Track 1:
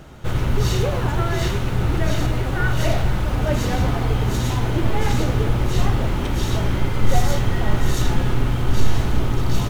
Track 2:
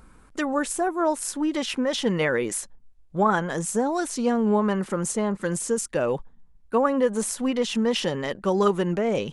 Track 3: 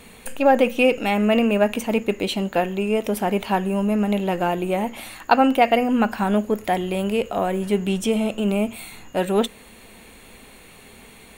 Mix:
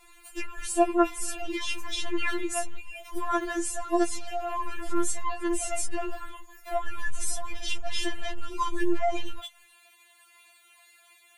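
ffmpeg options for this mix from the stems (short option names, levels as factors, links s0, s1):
-filter_complex "[0:a]aemphasis=mode=reproduction:type=bsi,adelay=50,volume=0.141[s0];[1:a]volume=1,asplit=2[s1][s2];[2:a]highpass=790,flanger=delay=16.5:depth=3.4:speed=1.6,volume=0.668[s3];[s2]apad=whole_len=429628[s4];[s0][s4]sidechaingate=range=0.00316:threshold=0.00708:ratio=16:detection=peak[s5];[s5][s3]amix=inputs=2:normalize=0,alimiter=limit=0.1:level=0:latency=1:release=231,volume=1[s6];[s1][s6]amix=inputs=2:normalize=0,lowshelf=f=360:g=-7,afftfilt=real='re*4*eq(mod(b,16),0)':imag='im*4*eq(mod(b,16),0)':win_size=2048:overlap=0.75"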